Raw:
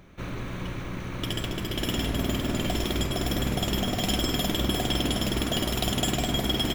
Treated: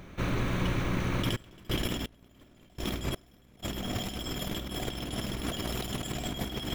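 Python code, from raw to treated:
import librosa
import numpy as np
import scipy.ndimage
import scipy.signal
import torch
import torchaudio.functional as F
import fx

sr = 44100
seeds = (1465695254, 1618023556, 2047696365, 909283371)

y = fx.over_compress(x, sr, threshold_db=-31.0, ratio=-0.5)
y = fx.step_gate(y, sr, bpm=124, pattern='.....xxx.', floor_db=-24.0, edge_ms=4.5, at=(1.35, 3.62), fade=0.02)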